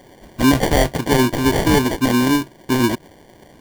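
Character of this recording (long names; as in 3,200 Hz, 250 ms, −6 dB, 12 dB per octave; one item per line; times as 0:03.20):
aliases and images of a low sample rate 1,300 Hz, jitter 0%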